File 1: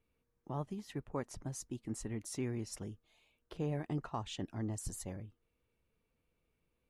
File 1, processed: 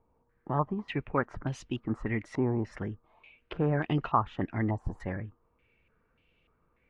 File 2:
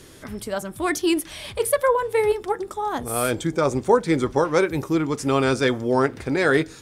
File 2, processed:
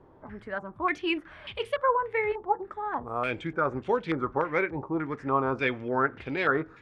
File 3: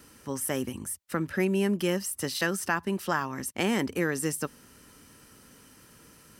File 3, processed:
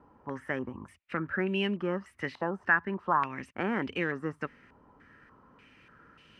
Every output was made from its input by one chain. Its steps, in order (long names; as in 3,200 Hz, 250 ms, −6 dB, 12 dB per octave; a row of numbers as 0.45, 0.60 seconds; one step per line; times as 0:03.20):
low-pass on a step sequencer 3.4 Hz 900–2,900 Hz
normalise the peak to −12 dBFS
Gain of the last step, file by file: +8.5, −9.5, −5.0 decibels